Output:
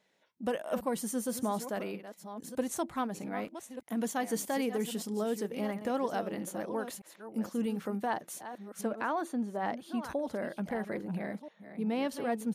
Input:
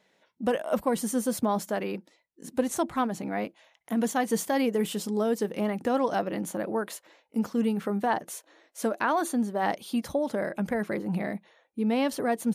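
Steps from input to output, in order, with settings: chunks repeated in reverse 638 ms, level -11 dB; treble shelf 4.4 kHz +3 dB, from 8.81 s -10 dB, from 10.03 s -2 dB; trim -6.5 dB

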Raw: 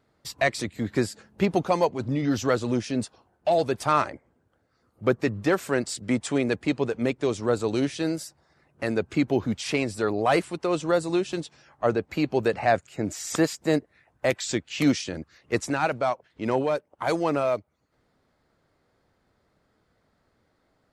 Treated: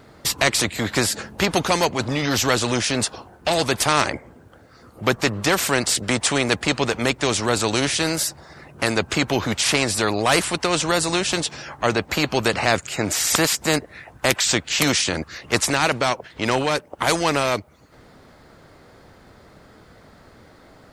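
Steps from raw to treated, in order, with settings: spectrum-flattening compressor 2:1; trim +6.5 dB

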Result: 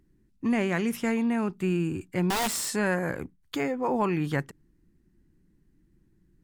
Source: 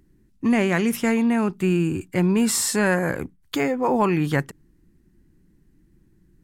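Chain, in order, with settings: treble shelf 8.2 kHz -4 dB; 2.30–2.75 s: integer overflow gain 16.5 dB; trim -6 dB

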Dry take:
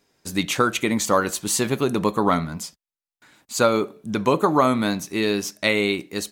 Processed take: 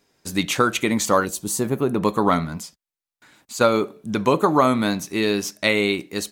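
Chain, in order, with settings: 1.24–2.02 s: peaking EQ 1.3 kHz -> 7.1 kHz -14 dB 2.2 oct; 2.60–3.61 s: compression 1.5:1, threshold -41 dBFS, peak gain reduction 7 dB; trim +1 dB

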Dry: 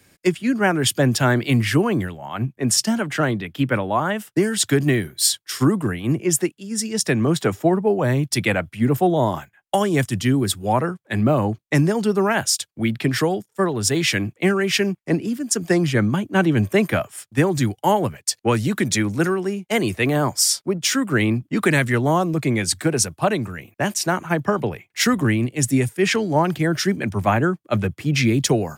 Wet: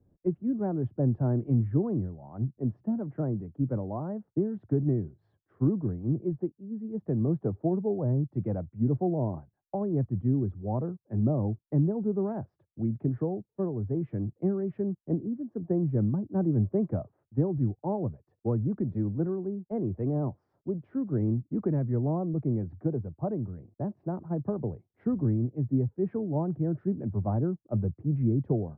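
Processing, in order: Bessel low-pass 510 Hz, order 4; bass shelf 96 Hz +10 dB; trim -9 dB

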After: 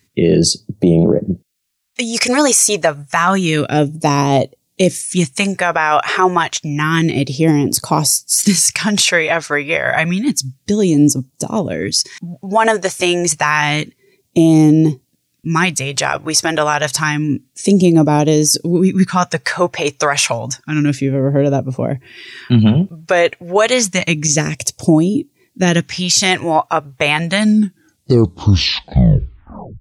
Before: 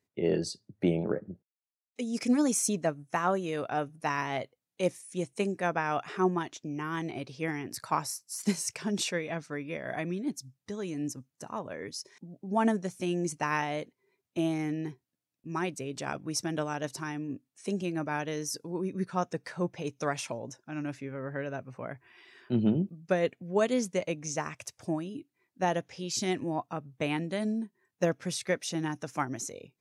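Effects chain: tape stop on the ending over 2.33 s; phase shifter stages 2, 0.29 Hz, lowest notch 200–1700 Hz; loudness maximiser +25.5 dB; trim -1.5 dB

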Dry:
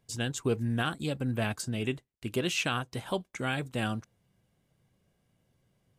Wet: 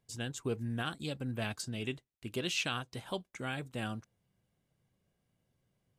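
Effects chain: 0.86–3.21 s: dynamic bell 4.2 kHz, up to +6 dB, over -48 dBFS, Q 0.98; trim -6.5 dB

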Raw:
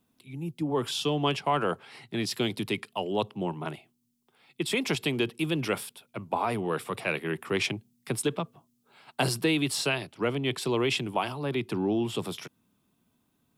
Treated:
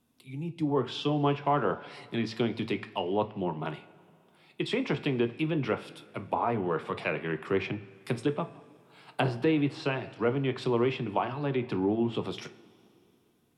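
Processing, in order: de-hum 111.2 Hz, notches 25; low-pass that closes with the level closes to 1.7 kHz, closed at -25 dBFS; two-slope reverb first 0.27 s, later 2.9 s, from -19 dB, DRR 10 dB

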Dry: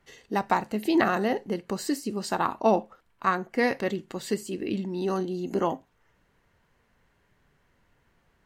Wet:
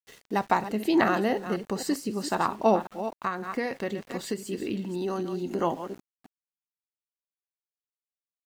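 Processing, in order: chunks repeated in reverse 261 ms, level -11 dB; small samples zeroed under -48 dBFS; 3.24–5.59 s: compression, threshold -26 dBFS, peak gain reduction 8 dB

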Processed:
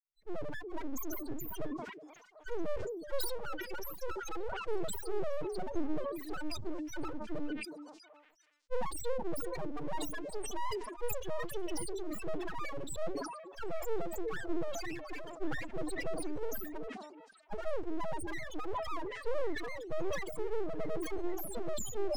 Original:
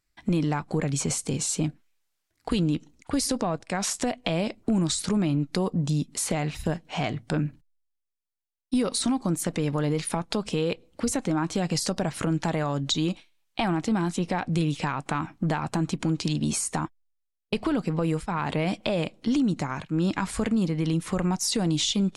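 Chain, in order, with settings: fade-in on the opening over 1.47 s; high-pass 130 Hz 6 dB/octave; reverb removal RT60 1.7 s; dynamic bell 3.1 kHz, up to +3 dB, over -48 dBFS, Q 1.6; compression 16:1, threshold -31 dBFS, peak gain reduction 12 dB; loudest bins only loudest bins 1; full-wave rectifier; wow and flutter 28 cents; repeats whose band climbs or falls 371 ms, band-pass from 350 Hz, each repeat 1.4 oct, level -8 dB; decay stretcher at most 53 dB/s; trim +10 dB

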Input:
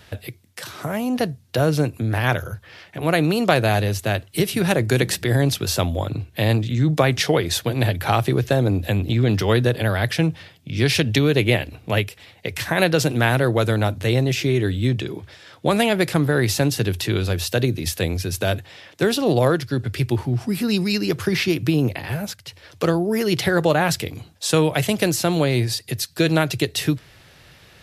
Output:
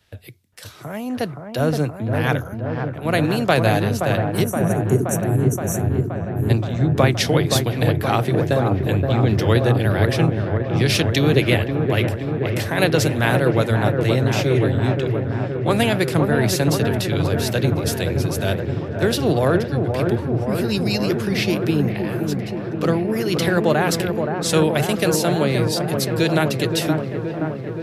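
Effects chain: spectral selection erased 4.44–6.50 s, 450–5600 Hz; feedback echo behind a low-pass 523 ms, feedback 80%, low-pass 1.4 kHz, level -4 dB; three bands expanded up and down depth 40%; trim -1 dB

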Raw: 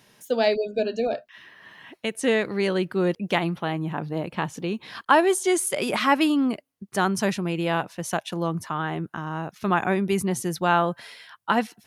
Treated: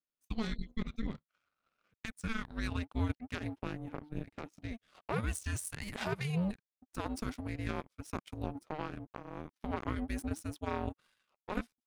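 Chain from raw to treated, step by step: peak limiter -16.5 dBFS, peak gain reduction 11.5 dB; frequency shift -450 Hz; power-law waveshaper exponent 2; trim -4.5 dB

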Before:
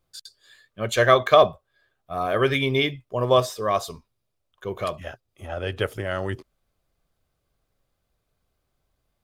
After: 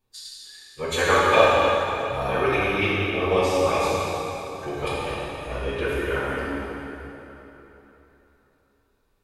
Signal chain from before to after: harmonic-percussive split percussive +6 dB; small resonant body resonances 2.5/3.9 kHz, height 10 dB, ringing for 40 ms; formant-preserving pitch shift -5.5 st; in parallel at 0 dB: compression, threshold -24 dBFS, peak gain reduction 16 dB; on the sum: plate-style reverb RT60 3.5 s, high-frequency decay 0.8×, DRR -8 dB; trim -13 dB

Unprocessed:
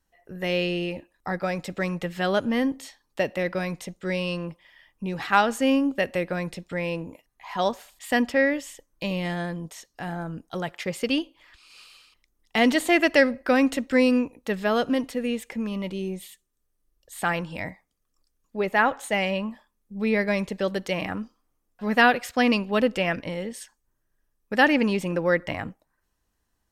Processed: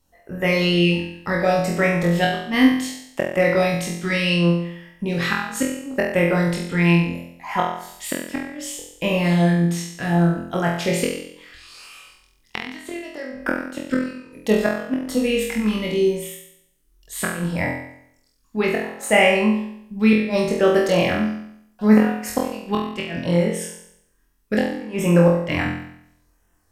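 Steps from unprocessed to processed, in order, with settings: inverted gate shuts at -14 dBFS, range -25 dB; LFO notch sine 0.69 Hz 520–4400 Hz; flutter echo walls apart 4 m, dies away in 0.7 s; trim +7 dB

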